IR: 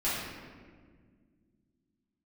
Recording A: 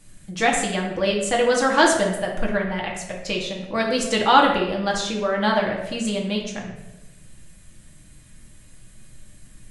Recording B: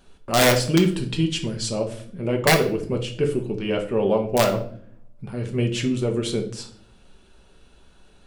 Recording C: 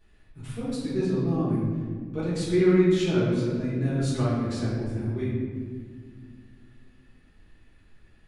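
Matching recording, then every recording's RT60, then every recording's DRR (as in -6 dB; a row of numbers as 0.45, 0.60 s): C; 1.0 s, not exponential, 1.8 s; -1.5, 3.0, -12.0 dB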